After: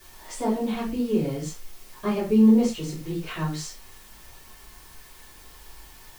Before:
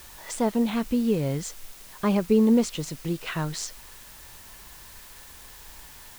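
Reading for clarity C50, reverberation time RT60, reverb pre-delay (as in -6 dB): 6.5 dB, not exponential, 5 ms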